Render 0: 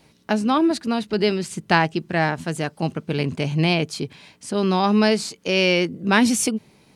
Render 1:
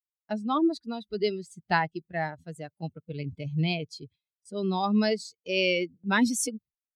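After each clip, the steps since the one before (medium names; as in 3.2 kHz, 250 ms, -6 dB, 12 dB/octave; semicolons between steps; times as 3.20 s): expander on every frequency bin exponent 2; gate with hold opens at -43 dBFS; trim -4 dB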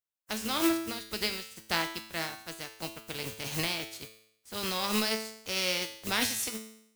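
spectral contrast reduction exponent 0.28; in parallel at +0.5 dB: compression, threshold -35 dBFS, peak gain reduction 16 dB; on the sum: feedback comb 110 Hz, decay 0.71 s, harmonics all, mix 80%; trim +4 dB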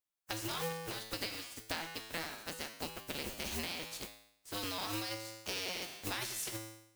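cycle switcher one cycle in 2, inverted; compression 6:1, threshold -36 dBFS, peak gain reduction 13.5 dB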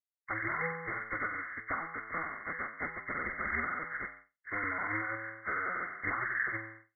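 knee-point frequency compression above 1 kHz 4:1; band-stop 900 Hz, Q 28; expander -50 dBFS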